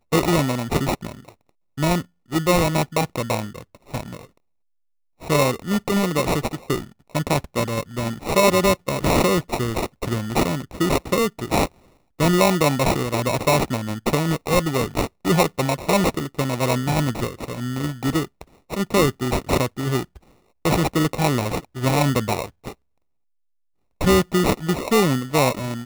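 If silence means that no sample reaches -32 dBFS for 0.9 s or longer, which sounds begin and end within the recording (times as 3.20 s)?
5.23–22.72 s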